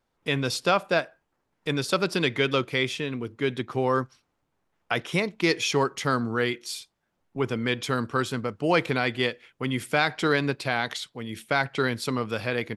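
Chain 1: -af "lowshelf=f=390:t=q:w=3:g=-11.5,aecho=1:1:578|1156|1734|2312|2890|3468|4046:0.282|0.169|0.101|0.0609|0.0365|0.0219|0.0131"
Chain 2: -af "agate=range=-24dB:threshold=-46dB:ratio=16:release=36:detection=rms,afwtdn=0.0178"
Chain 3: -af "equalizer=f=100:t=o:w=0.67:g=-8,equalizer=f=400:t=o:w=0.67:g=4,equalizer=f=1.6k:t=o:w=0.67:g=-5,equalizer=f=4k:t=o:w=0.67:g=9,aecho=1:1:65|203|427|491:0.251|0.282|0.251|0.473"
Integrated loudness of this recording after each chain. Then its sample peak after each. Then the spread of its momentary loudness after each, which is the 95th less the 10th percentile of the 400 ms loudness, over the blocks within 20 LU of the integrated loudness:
-25.5, -27.0, -24.0 LUFS; -6.0, -6.0, -5.5 dBFS; 11, 8, 8 LU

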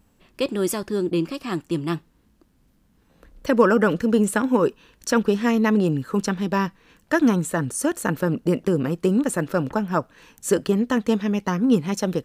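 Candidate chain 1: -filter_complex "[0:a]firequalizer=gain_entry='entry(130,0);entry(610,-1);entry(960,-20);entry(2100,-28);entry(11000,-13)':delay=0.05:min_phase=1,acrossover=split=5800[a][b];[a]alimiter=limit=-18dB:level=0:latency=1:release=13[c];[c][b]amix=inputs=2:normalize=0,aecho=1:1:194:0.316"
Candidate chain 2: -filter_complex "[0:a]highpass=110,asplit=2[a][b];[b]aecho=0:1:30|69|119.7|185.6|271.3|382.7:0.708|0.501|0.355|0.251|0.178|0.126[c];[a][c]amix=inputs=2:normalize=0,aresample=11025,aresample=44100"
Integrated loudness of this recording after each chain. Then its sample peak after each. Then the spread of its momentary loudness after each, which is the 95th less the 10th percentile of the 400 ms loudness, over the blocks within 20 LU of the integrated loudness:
-26.5, -19.5 LUFS; -15.5, -2.5 dBFS; 7, 8 LU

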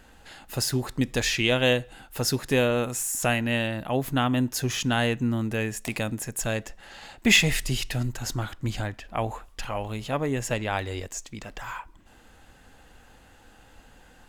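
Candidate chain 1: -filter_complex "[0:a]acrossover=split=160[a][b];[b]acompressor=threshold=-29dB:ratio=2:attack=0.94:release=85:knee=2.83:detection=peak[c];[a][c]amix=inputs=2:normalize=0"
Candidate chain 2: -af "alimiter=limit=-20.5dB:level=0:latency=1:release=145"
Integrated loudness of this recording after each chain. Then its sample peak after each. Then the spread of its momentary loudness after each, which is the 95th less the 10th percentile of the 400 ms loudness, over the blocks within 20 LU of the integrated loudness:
-31.0, -31.5 LUFS; -14.5, -20.5 dBFS; 10, 9 LU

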